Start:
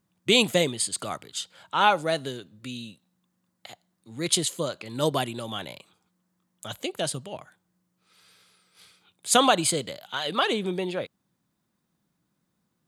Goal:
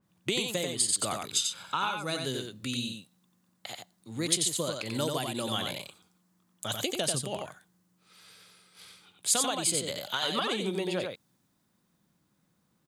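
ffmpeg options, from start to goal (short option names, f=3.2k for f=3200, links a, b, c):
-filter_complex "[0:a]asettb=1/sr,asplit=3[a][b][c];[a]atrim=end=1.204[d];[b]atrim=start=1.2:end=2.25,asetpts=PTS-STARTPTS,afade=t=in:d=0.004:c=qsin,afade=t=out:st=1.046:d=0.004:c=qsin,aecho=1:1:0.8:0.51,atrim=end_sample=46305[e];[c]atrim=start=2.246[f];[d][e]acrossfade=d=0.004:c1=hsin:c2=qsin[g];[g][f]acrossfade=d=0.004:c1=qsin:c2=hsin,acompressor=threshold=-30dB:ratio=16,aecho=1:1:90:0.596,adynamicequalizer=threshold=0.00355:dfrequency=3400:dqfactor=0.7:tfrequency=3400:tqfactor=0.7:attack=5:release=100:ratio=0.375:range=3:mode=boostabove:tftype=highshelf,volume=2dB"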